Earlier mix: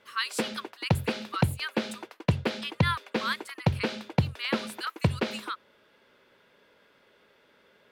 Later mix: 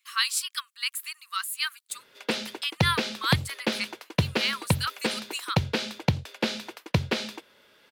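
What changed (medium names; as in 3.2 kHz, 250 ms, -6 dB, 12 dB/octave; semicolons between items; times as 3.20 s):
background: entry +1.90 s; master: add treble shelf 2.8 kHz +11.5 dB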